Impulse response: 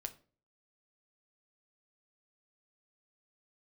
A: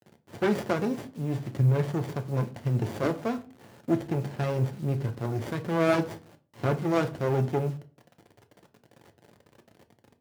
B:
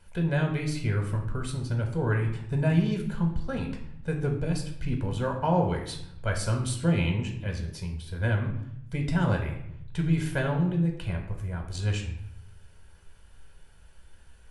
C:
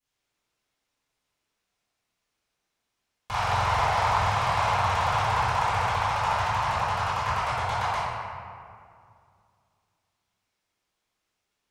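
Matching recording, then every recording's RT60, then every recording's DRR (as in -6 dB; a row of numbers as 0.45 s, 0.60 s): A; 0.40 s, 0.75 s, 2.3 s; 6.5 dB, 1.5 dB, -16.5 dB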